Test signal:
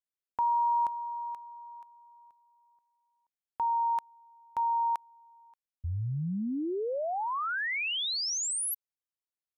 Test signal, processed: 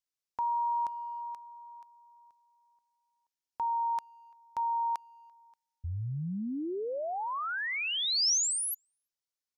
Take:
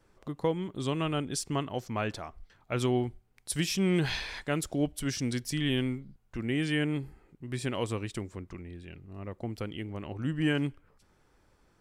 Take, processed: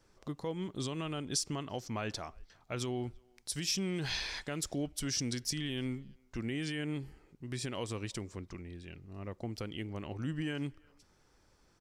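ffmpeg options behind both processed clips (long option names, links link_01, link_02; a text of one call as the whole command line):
ffmpeg -i in.wav -filter_complex "[0:a]alimiter=level_in=0.5dB:limit=-24dB:level=0:latency=1:release=130,volume=-0.5dB,equalizer=frequency=5500:width=1.3:gain=8.5,asplit=2[link_01][link_02];[link_02]adelay=340,highpass=300,lowpass=3400,asoftclip=type=hard:threshold=-26dB,volume=-29dB[link_03];[link_01][link_03]amix=inputs=2:normalize=0,volume=-2.5dB" out.wav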